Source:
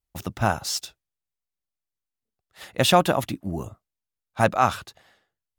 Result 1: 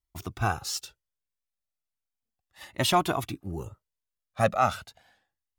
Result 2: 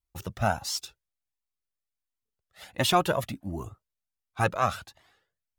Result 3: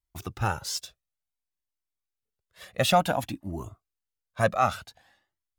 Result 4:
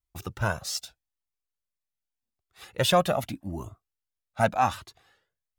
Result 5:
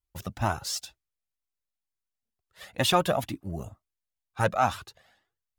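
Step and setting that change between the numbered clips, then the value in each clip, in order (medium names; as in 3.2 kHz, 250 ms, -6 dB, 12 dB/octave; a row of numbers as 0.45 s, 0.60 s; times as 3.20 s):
Shepard-style flanger, rate: 0.35 Hz, 1.4 Hz, 0.56 Hz, 0.83 Hz, 2.1 Hz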